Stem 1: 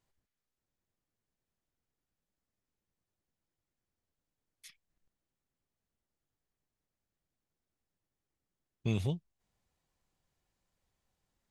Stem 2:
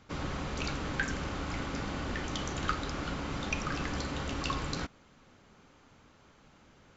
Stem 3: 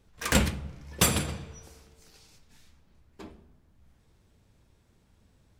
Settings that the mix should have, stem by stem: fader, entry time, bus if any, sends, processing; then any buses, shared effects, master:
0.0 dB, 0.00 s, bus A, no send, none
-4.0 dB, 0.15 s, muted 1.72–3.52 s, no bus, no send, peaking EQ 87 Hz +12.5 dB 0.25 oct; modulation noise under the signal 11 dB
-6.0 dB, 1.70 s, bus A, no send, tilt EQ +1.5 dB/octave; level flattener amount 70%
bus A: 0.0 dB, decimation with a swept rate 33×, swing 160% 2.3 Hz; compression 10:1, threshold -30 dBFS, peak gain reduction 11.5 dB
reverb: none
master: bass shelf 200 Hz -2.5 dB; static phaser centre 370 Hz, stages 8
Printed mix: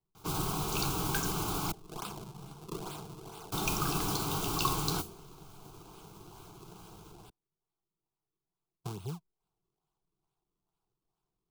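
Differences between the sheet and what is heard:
stem 2 -4.0 dB -> +6.0 dB; stem 3 -6.0 dB -> -16.5 dB

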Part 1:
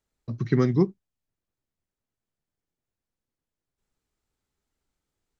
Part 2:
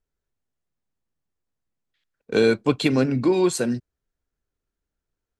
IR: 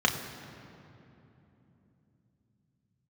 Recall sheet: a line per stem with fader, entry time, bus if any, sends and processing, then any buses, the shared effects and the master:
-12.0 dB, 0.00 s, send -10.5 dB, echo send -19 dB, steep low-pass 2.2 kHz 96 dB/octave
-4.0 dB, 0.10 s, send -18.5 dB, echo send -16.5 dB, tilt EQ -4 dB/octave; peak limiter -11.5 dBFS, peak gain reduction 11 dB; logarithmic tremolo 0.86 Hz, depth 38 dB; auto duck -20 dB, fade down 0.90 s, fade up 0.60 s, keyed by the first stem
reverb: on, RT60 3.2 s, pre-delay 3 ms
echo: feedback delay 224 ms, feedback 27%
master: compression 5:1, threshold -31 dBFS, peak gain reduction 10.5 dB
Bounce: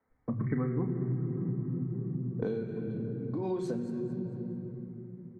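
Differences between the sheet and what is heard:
stem 1 -12.0 dB -> -1.0 dB; reverb return +8.0 dB

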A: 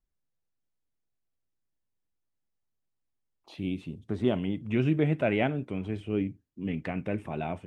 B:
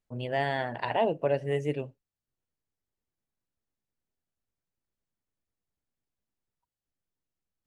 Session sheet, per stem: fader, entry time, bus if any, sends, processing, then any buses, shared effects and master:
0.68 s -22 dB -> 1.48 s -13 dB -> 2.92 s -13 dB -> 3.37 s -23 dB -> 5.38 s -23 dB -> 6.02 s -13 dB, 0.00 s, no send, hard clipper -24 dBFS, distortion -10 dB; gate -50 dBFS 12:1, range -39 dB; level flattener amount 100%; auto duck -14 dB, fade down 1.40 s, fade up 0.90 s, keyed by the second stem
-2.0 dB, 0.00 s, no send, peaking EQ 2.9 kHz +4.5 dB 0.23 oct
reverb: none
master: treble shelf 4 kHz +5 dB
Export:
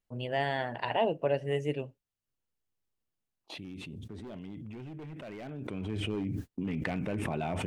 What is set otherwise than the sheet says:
stem A -22.0 dB -> -16.0 dB; master: missing treble shelf 4 kHz +5 dB

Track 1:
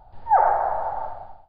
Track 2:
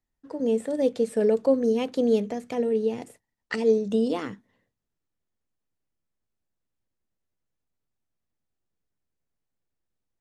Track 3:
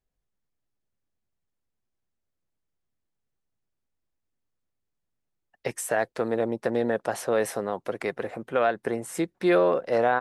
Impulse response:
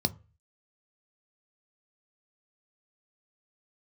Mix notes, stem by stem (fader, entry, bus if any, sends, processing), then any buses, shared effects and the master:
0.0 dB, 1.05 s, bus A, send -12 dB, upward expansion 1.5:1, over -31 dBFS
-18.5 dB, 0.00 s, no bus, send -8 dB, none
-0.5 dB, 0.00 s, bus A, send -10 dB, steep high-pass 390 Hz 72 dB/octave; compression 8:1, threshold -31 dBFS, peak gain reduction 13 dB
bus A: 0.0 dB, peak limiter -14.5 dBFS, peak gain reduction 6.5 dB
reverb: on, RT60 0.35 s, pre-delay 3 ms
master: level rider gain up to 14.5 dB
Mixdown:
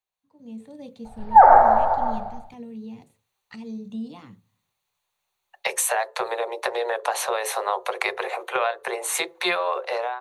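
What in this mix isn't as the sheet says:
stem 1: send off; stem 2 -18.5 dB -> -28.0 dB

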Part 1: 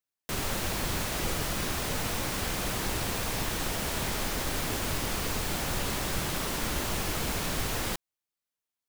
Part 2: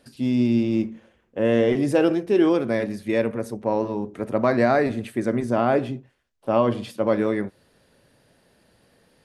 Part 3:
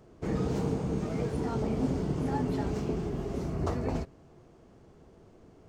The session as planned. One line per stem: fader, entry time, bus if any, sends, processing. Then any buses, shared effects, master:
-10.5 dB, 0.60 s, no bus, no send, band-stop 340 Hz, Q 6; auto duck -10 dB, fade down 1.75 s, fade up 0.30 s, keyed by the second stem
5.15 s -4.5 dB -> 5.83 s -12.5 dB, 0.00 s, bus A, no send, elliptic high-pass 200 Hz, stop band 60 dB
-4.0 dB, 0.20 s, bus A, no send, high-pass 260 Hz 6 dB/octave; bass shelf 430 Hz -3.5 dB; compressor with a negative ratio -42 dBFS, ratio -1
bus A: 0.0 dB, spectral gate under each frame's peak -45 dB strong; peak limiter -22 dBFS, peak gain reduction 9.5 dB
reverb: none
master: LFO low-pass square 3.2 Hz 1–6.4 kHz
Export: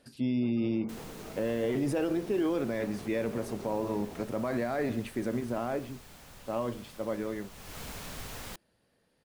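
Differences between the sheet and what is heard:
stem 2: missing elliptic high-pass 200 Hz, stop band 60 dB; master: missing LFO low-pass square 3.2 Hz 1–6.4 kHz

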